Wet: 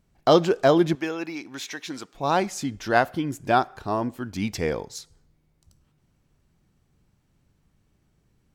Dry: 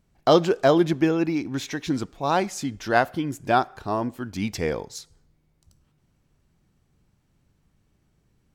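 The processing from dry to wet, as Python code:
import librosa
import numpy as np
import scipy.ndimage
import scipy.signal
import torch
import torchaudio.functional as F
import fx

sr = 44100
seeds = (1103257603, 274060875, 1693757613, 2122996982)

y = fx.highpass(x, sr, hz=900.0, slope=6, at=(0.95, 2.15))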